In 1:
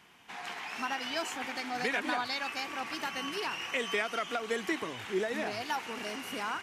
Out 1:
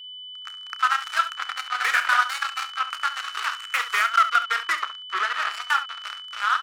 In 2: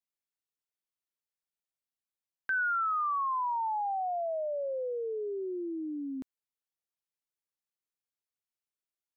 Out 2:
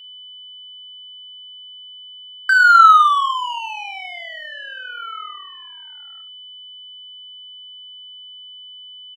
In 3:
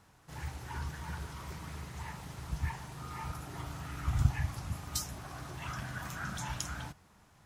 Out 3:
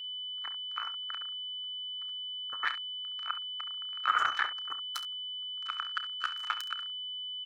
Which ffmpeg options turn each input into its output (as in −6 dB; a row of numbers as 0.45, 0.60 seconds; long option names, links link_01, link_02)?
-filter_complex "[0:a]afftdn=noise_reduction=29:noise_floor=-47,acrossover=split=4400[link_01][link_02];[link_02]acompressor=threshold=-53dB:ratio=4:attack=1:release=60[link_03];[link_01][link_03]amix=inputs=2:normalize=0,tremolo=f=40:d=0.182,acrusher=bits=4:mix=0:aa=0.5,highpass=frequency=1300:width_type=q:width=6.8,aeval=exprs='val(0)+0.00562*sin(2*PI*3000*n/s)':channel_layout=same,asplit=2[link_04][link_05];[link_05]aecho=0:1:31|68:0.211|0.237[link_06];[link_04][link_06]amix=inputs=2:normalize=0,volume=5.5dB"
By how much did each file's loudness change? +10.5, +19.0, +5.0 LU